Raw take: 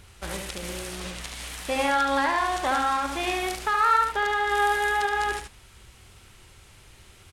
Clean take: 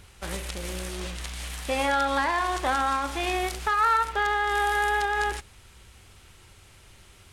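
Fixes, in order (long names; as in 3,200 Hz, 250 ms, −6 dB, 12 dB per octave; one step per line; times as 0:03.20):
echo removal 73 ms −5.5 dB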